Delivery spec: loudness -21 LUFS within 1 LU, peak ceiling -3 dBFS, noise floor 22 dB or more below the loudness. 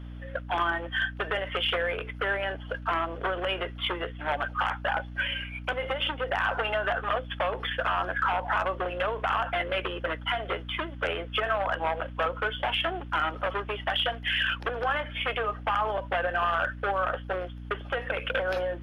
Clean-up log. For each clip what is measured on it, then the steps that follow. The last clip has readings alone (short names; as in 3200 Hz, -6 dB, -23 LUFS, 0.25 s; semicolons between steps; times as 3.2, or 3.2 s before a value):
hum 60 Hz; harmonics up to 300 Hz; hum level -38 dBFS; loudness -29.0 LUFS; peak -15.5 dBFS; loudness target -21.0 LUFS
-> notches 60/120/180/240/300 Hz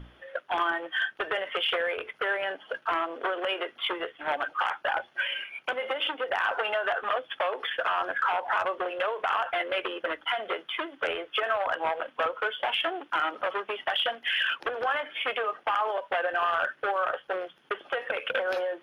hum none; loudness -29.5 LUFS; peak -16.0 dBFS; loudness target -21.0 LUFS
-> gain +8.5 dB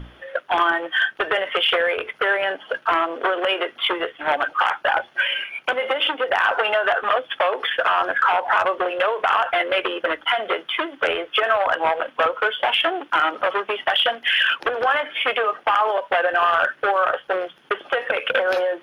loudness -21.0 LUFS; peak -7.5 dBFS; noise floor -52 dBFS